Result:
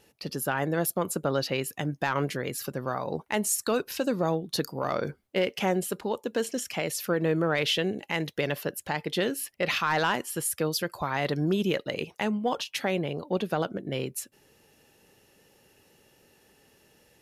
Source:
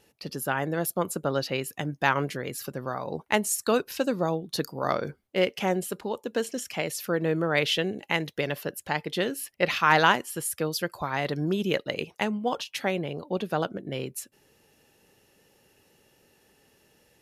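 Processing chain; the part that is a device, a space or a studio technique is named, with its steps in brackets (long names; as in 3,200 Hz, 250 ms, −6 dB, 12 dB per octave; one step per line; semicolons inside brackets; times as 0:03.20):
soft clipper into limiter (soft clipping −11 dBFS, distortion −20 dB; brickwall limiter −18 dBFS, peak gain reduction 6.5 dB)
level +1.5 dB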